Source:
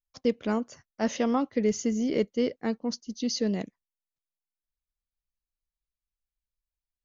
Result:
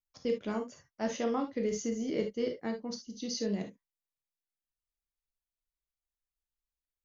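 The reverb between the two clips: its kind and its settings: non-linear reverb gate 90 ms flat, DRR 3.5 dB; gain -7 dB

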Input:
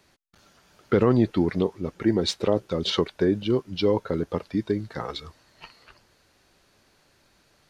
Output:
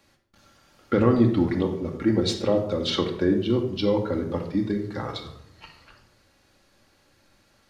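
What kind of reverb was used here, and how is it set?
shoebox room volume 1900 m³, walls furnished, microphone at 2.3 m; gain -2 dB

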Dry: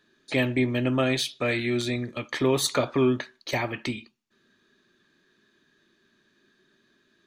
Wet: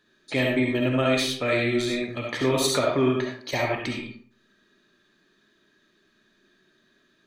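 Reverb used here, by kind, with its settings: digital reverb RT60 0.52 s, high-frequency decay 0.6×, pre-delay 25 ms, DRR -0.5 dB; gain -1 dB

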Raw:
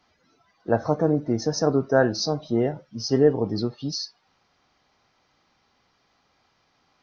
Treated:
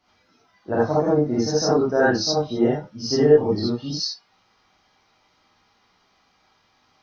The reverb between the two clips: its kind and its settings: non-linear reverb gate 0.1 s rising, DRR -8 dB; gain -4.5 dB

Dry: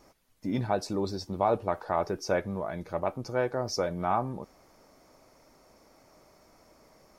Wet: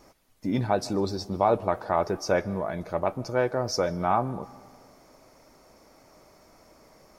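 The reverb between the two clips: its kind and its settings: digital reverb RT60 1.7 s, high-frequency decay 0.45×, pre-delay 95 ms, DRR 20 dB; gain +3.5 dB

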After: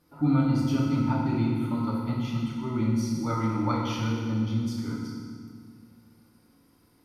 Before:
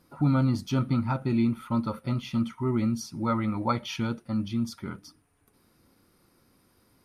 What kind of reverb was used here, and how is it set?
FDN reverb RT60 1.9 s, low-frequency decay 1.5×, high-frequency decay 0.9×, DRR -4 dB; gain -5.5 dB

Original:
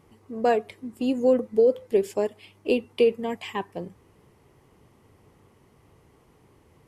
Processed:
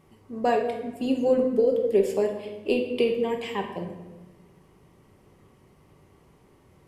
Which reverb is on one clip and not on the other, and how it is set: shoebox room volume 690 m³, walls mixed, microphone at 1.1 m; gain -1.5 dB

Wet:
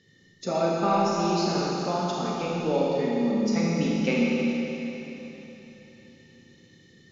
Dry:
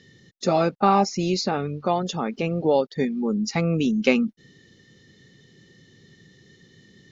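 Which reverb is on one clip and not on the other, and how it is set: Schroeder reverb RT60 3.6 s, combs from 26 ms, DRR -5 dB; gain -8.5 dB

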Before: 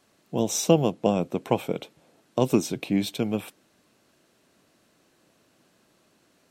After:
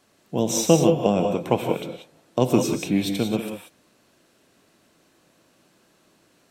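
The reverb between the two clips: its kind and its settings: non-linear reverb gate 0.21 s rising, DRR 4.5 dB; gain +2 dB

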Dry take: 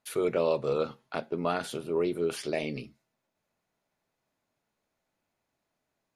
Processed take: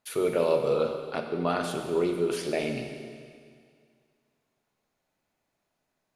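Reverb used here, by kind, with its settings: Schroeder reverb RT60 2.1 s, combs from 31 ms, DRR 4.5 dB; gain +1 dB

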